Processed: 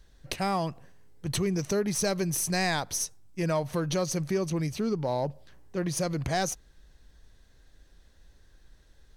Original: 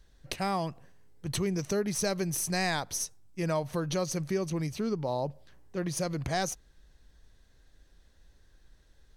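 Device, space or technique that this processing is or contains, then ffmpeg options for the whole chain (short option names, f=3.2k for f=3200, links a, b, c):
parallel distortion: -filter_complex "[0:a]asplit=2[a][b];[b]asoftclip=type=hard:threshold=-28.5dB,volume=-8dB[c];[a][c]amix=inputs=2:normalize=0"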